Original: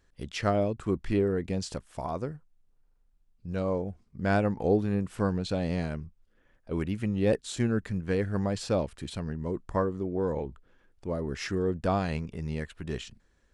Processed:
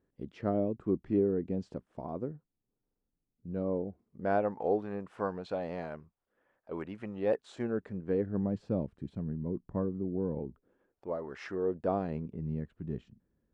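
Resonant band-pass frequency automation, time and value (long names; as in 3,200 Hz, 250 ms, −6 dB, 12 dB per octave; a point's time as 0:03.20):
resonant band-pass, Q 1
0:03.74 290 Hz
0:04.59 800 Hz
0:07.44 800 Hz
0:08.62 200 Hz
0:10.37 200 Hz
0:11.29 1,000 Hz
0:12.50 190 Hz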